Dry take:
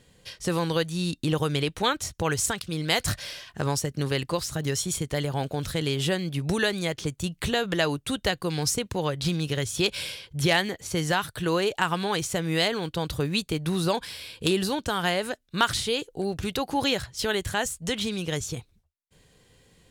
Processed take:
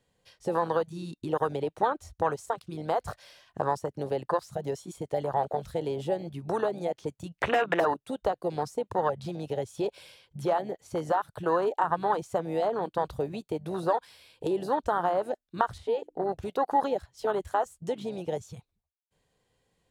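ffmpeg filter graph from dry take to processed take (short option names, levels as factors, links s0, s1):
-filter_complex "[0:a]asettb=1/sr,asplit=3[s0][s1][s2];[s0]atrim=end=7.384[s3];[s1]atrim=start=7.38:end=7.94,asetpts=PTS-STARTPTS,afade=t=in:d=0.004:c=qsin,afade=t=out:st=0.556:d=0.004:c=qsin,equalizer=f=2100:w=0.34:g=14.5,aeval=exprs='0.282*(abs(mod(val(0)/0.282+3,4)-2)-1)':c=same,highpass=41[s4];[s2]atrim=start=7.936[s5];[s3][s4]acrossfade=d=0.004:c1=hsin:c2=qsin[s6];[s6][s5]acrossfade=d=0.004:c1=qsin:c2=hsin,asettb=1/sr,asplit=3[s7][s8][s9];[s7]atrim=end=15.784[s10];[s8]atrim=start=15.78:end=16.29,asetpts=PTS-STARTPTS,afade=t=in:d=0.004:c=qsin,afade=t=out:st=0.506:d=0.004:c=qsin,bass=f=250:g=-1,treble=f=4000:g=-10,bandreject=f=50:t=h:w=6,bandreject=f=100:t=h:w=6,bandreject=f=150:t=h:w=6,bandreject=f=200:t=h:w=6,bandreject=f=250:t=h:w=6,bandreject=f=300:t=h:w=6,bandreject=f=350:t=h:w=6[s11];[s9]atrim=start=16.286[s12];[s10][s11]acrossfade=d=0.004:c1=hsin:c2=qsin[s13];[s13][s12]acrossfade=d=0.004:c1=qsin:c2=hsin,equalizer=f=790:w=1:g=8,acrossover=split=370|1100[s14][s15][s16];[s14]acompressor=threshold=0.01:ratio=4[s17];[s15]acompressor=threshold=0.0631:ratio=4[s18];[s16]acompressor=threshold=0.0316:ratio=4[s19];[s17][s18][s19]amix=inputs=3:normalize=0,afwtdn=0.0501"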